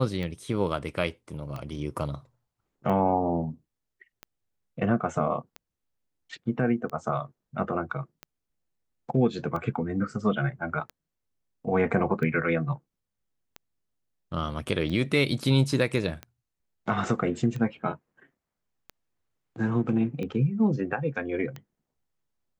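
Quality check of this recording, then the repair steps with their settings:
scratch tick 45 rpm −23 dBFS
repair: click removal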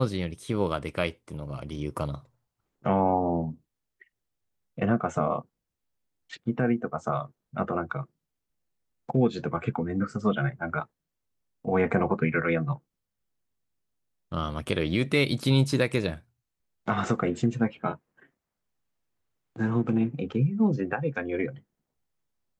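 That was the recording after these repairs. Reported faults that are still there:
none of them is left

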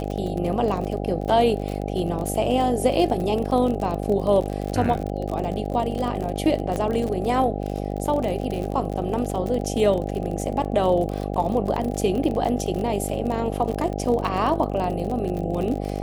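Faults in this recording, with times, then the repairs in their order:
mains buzz 50 Hz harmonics 16 −28 dBFS
surface crackle 41 per second −27 dBFS
0:06.76: click −15 dBFS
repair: click removal
hum removal 50 Hz, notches 16

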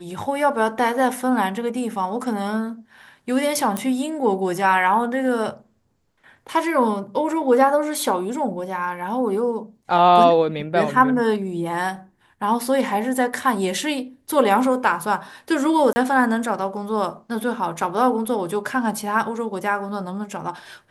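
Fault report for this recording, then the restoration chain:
0:03.77: click −10 dBFS
0:15.93–0:15.96: drop-out 30 ms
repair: click removal
repair the gap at 0:15.93, 30 ms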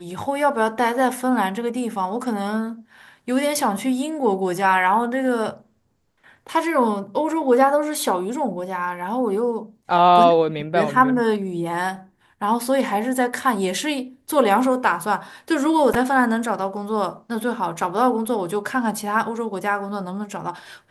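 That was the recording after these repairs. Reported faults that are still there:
none of them is left

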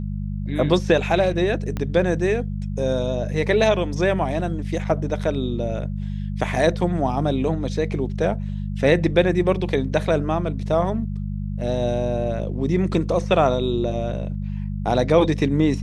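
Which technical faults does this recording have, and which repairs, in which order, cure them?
mains hum 50 Hz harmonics 4 −27 dBFS
0:01.77: click −14 dBFS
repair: click removal
hum removal 50 Hz, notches 4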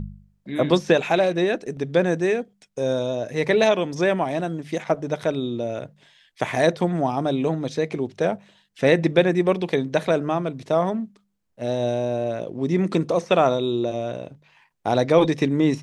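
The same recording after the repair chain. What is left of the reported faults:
0:01.77: click

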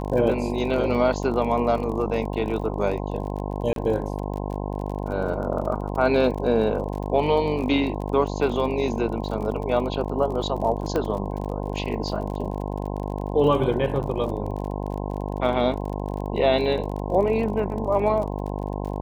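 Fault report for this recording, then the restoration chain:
mains buzz 50 Hz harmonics 21 −29 dBFS
surface crackle 37 per second −32 dBFS
0:03.73–0:03.76: drop-out 32 ms
0:10.96: click −13 dBFS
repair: click removal
hum removal 50 Hz, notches 21
repair the gap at 0:03.73, 32 ms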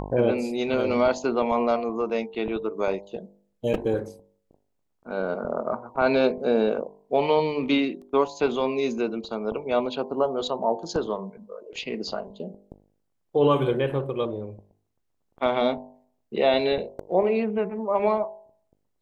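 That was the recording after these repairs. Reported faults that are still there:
0:10.96: click

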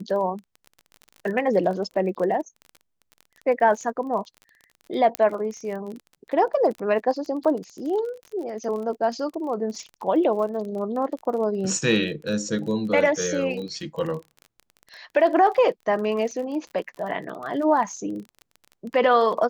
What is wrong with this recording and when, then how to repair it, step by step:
surface crackle 28 per second −32 dBFS
0:05.15: click −9 dBFS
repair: click removal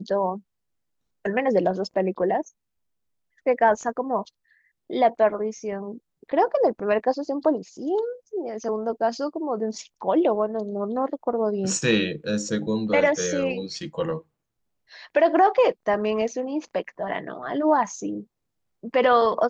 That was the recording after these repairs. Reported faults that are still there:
none of them is left

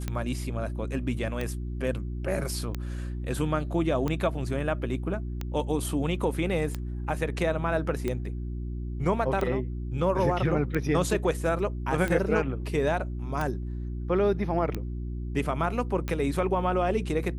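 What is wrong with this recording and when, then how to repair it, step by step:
mains hum 60 Hz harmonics 6 −33 dBFS
scratch tick 45 rpm −17 dBFS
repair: click removal
hum removal 60 Hz, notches 6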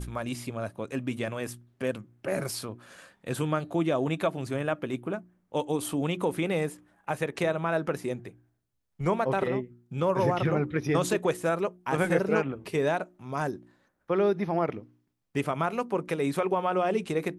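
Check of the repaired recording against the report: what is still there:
none of them is left

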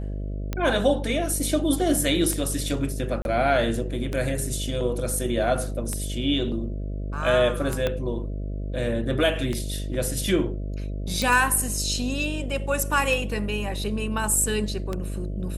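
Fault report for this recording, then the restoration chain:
mains buzz 50 Hz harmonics 13 −30 dBFS
scratch tick 33 1/3 rpm −14 dBFS
0:03.22–0:03.25: drop-out 31 ms
0:07.87: click −12 dBFS
0:11.22: click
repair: click removal
hum removal 50 Hz, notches 13
repair the gap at 0:03.22, 31 ms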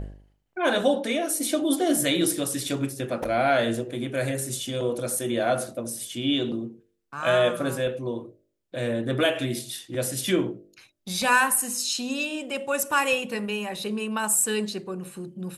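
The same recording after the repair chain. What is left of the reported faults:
0:07.87: click

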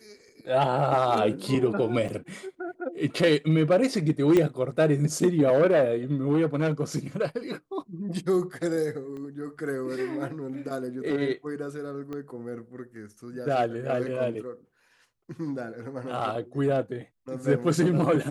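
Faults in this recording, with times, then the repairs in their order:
0:02.08–0:02.09: drop-out 6 ms
0:04.37: click −11 dBFS
0:09.17: click −31 dBFS
0:12.13: click −25 dBFS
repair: click removal
repair the gap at 0:02.08, 6 ms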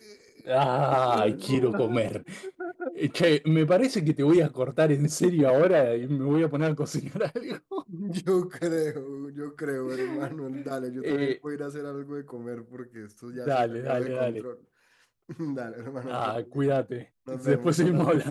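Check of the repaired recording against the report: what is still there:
0:04.37: click
0:09.17: click
0:12.13: click

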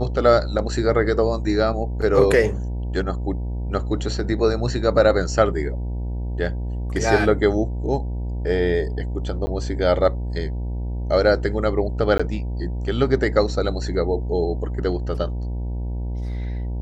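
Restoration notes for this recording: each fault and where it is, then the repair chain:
mains buzz 60 Hz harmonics 16 −26 dBFS
0:09.46–0:09.47: drop-out 10 ms
0:12.18–0:12.20: drop-out 15 ms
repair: hum removal 60 Hz, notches 16
repair the gap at 0:09.46, 10 ms
repair the gap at 0:12.18, 15 ms

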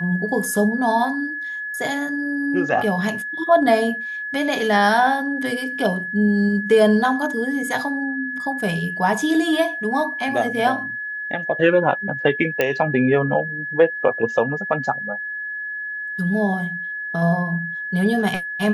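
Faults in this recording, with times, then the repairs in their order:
whistle 1,700 Hz −26 dBFS
0:12.61: click −6 dBFS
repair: click removal
notch filter 1,700 Hz, Q 30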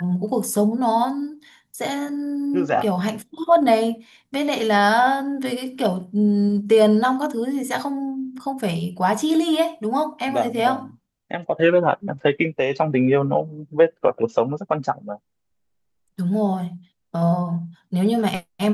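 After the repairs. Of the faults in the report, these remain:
none of them is left

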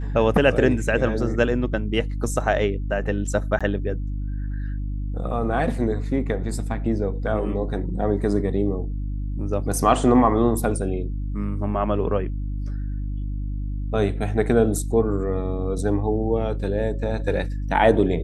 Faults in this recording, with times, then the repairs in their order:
mains hum 50 Hz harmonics 6 −27 dBFS
0:03.59–0:03.61: drop-out 16 ms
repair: hum removal 50 Hz, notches 6
repair the gap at 0:03.59, 16 ms

